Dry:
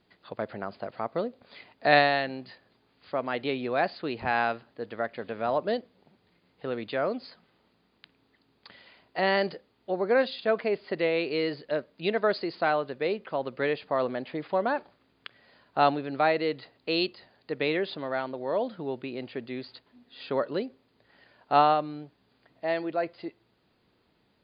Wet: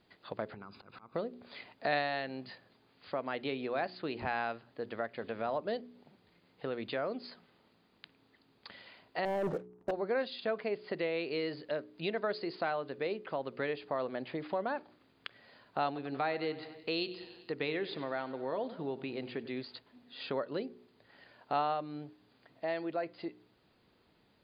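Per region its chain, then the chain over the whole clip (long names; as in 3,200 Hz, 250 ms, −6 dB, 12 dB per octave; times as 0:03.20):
0:00.54–0:01.15: comb filter 0.8 ms, depth 76% + downward compressor 10 to 1, threshold −43 dBFS + volume swells 101 ms
0:09.25–0:09.91: low-pass filter 1,200 Hz 24 dB per octave + compressor whose output falls as the input rises −31 dBFS + leveller curve on the samples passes 3
0:15.86–0:19.62: notch filter 590 Hz, Q 10 + repeating echo 95 ms, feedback 57%, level −17 dB
whole clip: hum removal 60.86 Hz, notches 7; downward compressor 2 to 1, threshold −37 dBFS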